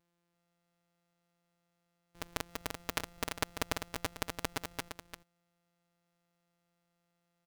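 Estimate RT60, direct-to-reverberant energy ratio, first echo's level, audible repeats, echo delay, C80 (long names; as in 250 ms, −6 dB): no reverb audible, no reverb audible, −6.5 dB, 1, 341 ms, no reverb audible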